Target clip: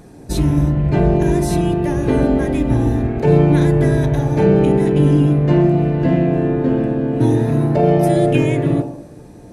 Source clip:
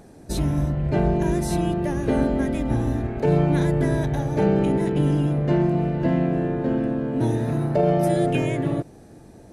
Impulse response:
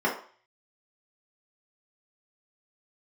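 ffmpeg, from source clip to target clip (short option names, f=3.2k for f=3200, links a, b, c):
-filter_complex "[0:a]asplit=2[a][b];[1:a]atrim=start_sample=2205,asetrate=22050,aresample=44100,lowshelf=f=240:g=-8.5[c];[b][c]afir=irnorm=-1:irlink=0,volume=-20dB[d];[a][d]amix=inputs=2:normalize=0,volume=5.5dB"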